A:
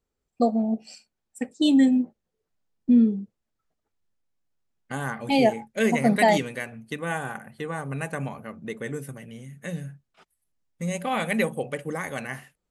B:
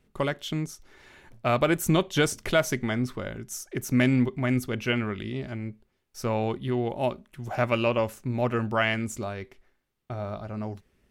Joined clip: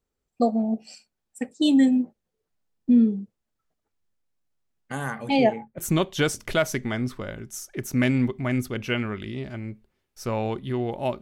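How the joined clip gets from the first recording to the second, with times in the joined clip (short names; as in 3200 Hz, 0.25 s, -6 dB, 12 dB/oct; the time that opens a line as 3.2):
A
5.27–5.78 LPF 6300 Hz -> 1200 Hz
5.78 switch to B from 1.76 s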